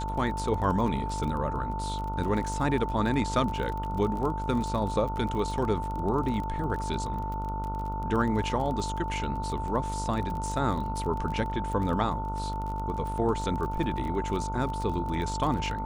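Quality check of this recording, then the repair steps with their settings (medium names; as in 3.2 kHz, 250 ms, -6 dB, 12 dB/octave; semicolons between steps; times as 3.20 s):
buzz 50 Hz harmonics 29 -34 dBFS
crackle 24 per s -33 dBFS
whine 890 Hz -33 dBFS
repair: de-click; de-hum 50 Hz, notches 29; band-stop 890 Hz, Q 30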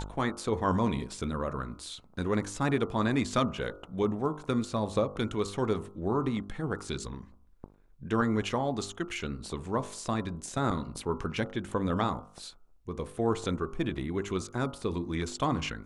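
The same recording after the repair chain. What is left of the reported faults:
nothing left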